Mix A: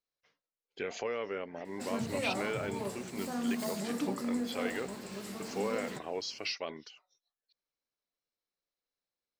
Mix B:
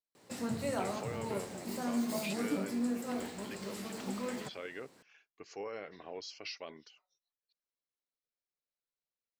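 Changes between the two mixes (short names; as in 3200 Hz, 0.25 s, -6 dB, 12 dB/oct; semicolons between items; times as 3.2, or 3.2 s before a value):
speech -7.0 dB; background: entry -1.50 s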